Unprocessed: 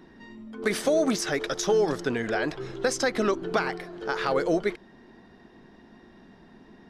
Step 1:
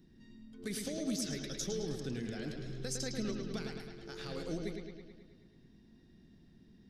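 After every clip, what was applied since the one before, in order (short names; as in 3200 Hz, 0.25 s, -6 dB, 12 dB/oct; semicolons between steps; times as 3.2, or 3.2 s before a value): EQ curve 150 Hz 0 dB, 960 Hz -23 dB, 3900 Hz -6 dB, 11000 Hz -1 dB; analogue delay 0.107 s, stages 4096, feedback 63%, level -5 dB; gain -4.5 dB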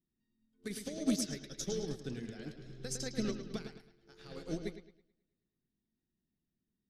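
upward expander 2.5:1, over -54 dBFS; gain +6.5 dB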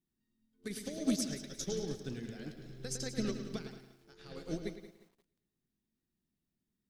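lo-fi delay 0.176 s, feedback 35%, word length 10-bit, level -13.5 dB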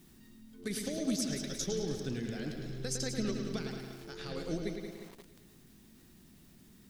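fast leveller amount 50%; gain -2.5 dB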